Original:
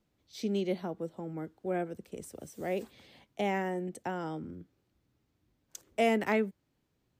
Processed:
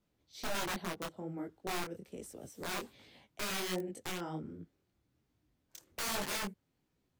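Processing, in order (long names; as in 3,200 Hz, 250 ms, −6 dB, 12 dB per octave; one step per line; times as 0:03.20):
wrap-around overflow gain 28.5 dB
micro pitch shift up and down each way 45 cents
level +1 dB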